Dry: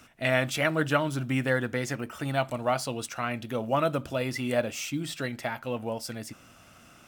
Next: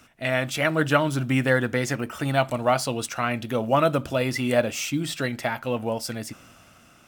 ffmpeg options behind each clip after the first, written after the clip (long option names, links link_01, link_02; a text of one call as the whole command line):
ffmpeg -i in.wav -af "dynaudnorm=framelen=120:gausssize=11:maxgain=5.5dB" out.wav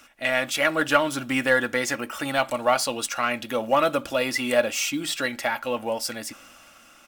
ffmpeg -i in.wav -filter_complex "[0:a]equalizer=frequency=97:width=0.32:gain=-13.5,asplit=2[link_01][link_02];[link_02]asoftclip=type=tanh:threshold=-21.5dB,volume=-6dB[link_03];[link_01][link_03]amix=inputs=2:normalize=0,aecho=1:1:3.6:0.39" out.wav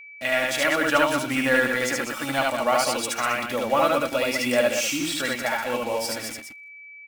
ffmpeg -i in.wav -af "acrusher=bits=5:mix=0:aa=0.5,aecho=1:1:72.89|195.3:0.891|0.447,aeval=exprs='val(0)+0.0112*sin(2*PI*2300*n/s)':channel_layout=same,volume=-2dB" out.wav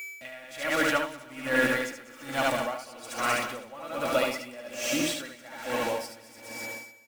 ffmpeg -i in.wav -af "aeval=exprs='val(0)+0.5*0.02*sgn(val(0))':channel_layout=same,aecho=1:1:256|512|768|1024|1280|1536|1792:0.355|0.209|0.124|0.0729|0.043|0.0254|0.015,aeval=exprs='val(0)*pow(10,-21*(0.5-0.5*cos(2*PI*1.2*n/s))/20)':channel_layout=same,volume=-2.5dB" out.wav